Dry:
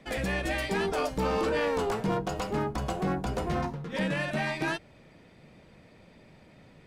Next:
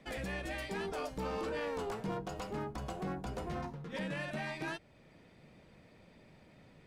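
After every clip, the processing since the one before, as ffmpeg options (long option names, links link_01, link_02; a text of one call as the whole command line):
ffmpeg -i in.wav -af "alimiter=level_in=1.5dB:limit=-24dB:level=0:latency=1:release=476,volume=-1.5dB,volume=-5dB" out.wav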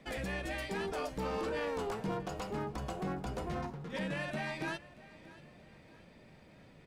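ffmpeg -i in.wav -af "aecho=1:1:633|1266|1899|2532:0.112|0.0516|0.0237|0.0109,volume=1.5dB" out.wav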